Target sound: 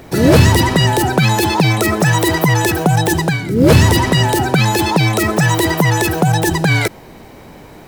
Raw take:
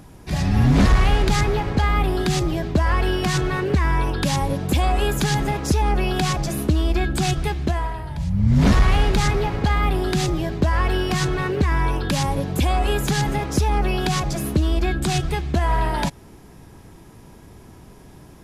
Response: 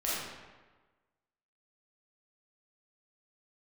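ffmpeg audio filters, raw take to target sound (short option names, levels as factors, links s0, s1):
-af "acrusher=bits=8:mode=log:mix=0:aa=0.000001,asetrate=103194,aresample=44100,volume=2.11"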